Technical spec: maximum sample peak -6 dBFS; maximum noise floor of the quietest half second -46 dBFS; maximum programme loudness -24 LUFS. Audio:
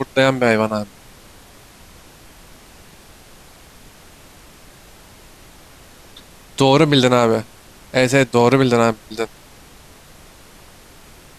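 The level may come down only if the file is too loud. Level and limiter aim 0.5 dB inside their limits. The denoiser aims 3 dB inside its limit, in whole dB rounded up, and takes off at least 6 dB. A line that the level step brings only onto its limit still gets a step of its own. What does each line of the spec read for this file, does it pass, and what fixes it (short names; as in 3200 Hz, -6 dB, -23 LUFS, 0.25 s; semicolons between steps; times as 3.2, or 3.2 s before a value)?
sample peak -2.5 dBFS: fail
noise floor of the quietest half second -44 dBFS: fail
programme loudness -16.0 LUFS: fail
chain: gain -8.5 dB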